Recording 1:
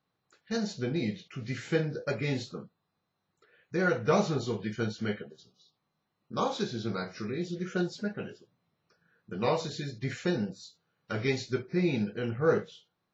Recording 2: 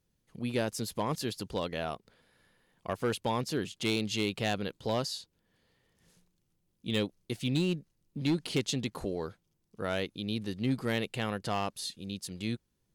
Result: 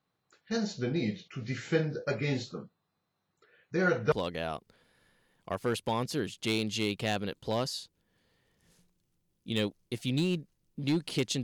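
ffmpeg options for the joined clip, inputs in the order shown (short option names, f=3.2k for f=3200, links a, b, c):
-filter_complex "[0:a]apad=whole_dur=11.43,atrim=end=11.43,atrim=end=4.122[a];[1:a]atrim=start=1.498:end=8.81[b];[a][b]acrossfade=d=0.004:c1=hsin:c2=hsin"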